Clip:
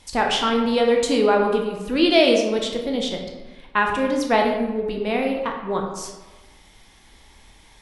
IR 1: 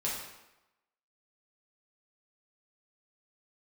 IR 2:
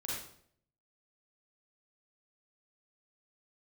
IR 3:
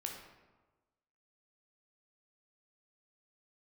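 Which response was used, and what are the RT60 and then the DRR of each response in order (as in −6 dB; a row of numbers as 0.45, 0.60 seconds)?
3; 0.95, 0.60, 1.3 seconds; −5.5, −6.0, 1.0 decibels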